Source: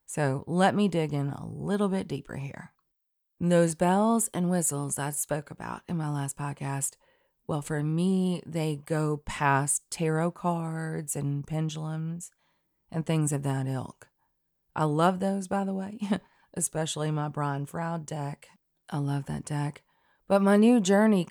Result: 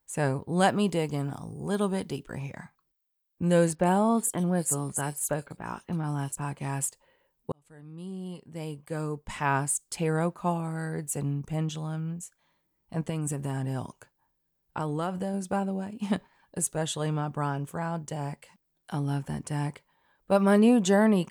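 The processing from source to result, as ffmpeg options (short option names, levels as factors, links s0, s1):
-filter_complex "[0:a]asettb=1/sr,asplit=3[s0][s1][s2];[s0]atrim=end=0.604[s3];[s1]atrim=start=0.6:end=2.23,asetpts=PTS-STARTPTS,afade=t=in:d=0.004:c=qsin,afade=t=out:st=1.626:d=0.004:c=qsin,bass=f=250:g=-2,treble=f=4000:g=5[s4];[s2]atrim=start=2.226[s5];[s3][s4]acrossfade=d=0.004:c1=hsin:c2=qsin[s6];[s6][s5]acrossfade=d=0.004:c1=qsin:c2=hsin,asettb=1/sr,asplit=3[s7][s8][s9];[s7]atrim=end=3.754[s10];[s8]atrim=start=3.75:end=6.42,asetpts=PTS-STARTPTS,afade=t=in:d=0.004:c=qsin,afade=t=out:st=2.666:d=0.004:c=qsin,acrossover=split=3500[s11][s12];[s12]adelay=40[s13];[s11][s13]amix=inputs=2:normalize=0,atrim=end_sample=117747[s14];[s9]atrim=start=6.416[s15];[s10][s14]acrossfade=d=0.004:c1=hsin:c2=qsin[s16];[s16][s15]acrossfade=d=0.004:c1=qsin:c2=hsin,asettb=1/sr,asplit=3[s17][s18][s19];[s17]atrim=end=13.094[s20];[s18]atrim=start=13.09:end=15.34,asetpts=PTS-STARTPTS,afade=t=in:d=0.004:c=qsin,afade=t=out:st=2.246:d=0.004:c=qsin,acompressor=threshold=0.0501:ratio=6:attack=3.2:release=140:knee=1:detection=peak[s21];[s19]atrim=start=15.336[s22];[s20][s21]acrossfade=d=0.004:c1=hsin:c2=qsin[s23];[s23][s22]acrossfade=d=0.004:c1=qsin:c2=hsin,asplit=2[s24][s25];[s24]atrim=end=7.52,asetpts=PTS-STARTPTS,afade=t=out:st=7.516:d=0.004:c=hsin[s26];[s25]atrim=start=7.52,asetpts=PTS-STARTPTS,afade=t=in:d=2.6[s27];[s26][s27]concat=n=2:v=0:a=1"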